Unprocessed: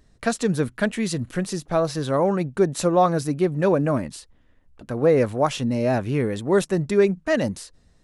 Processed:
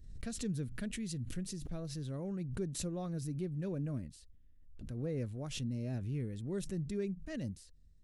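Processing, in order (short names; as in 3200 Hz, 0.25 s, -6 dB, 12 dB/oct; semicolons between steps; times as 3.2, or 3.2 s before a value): passive tone stack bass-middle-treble 10-0-1; backwards sustainer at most 53 dB/s; gain +1.5 dB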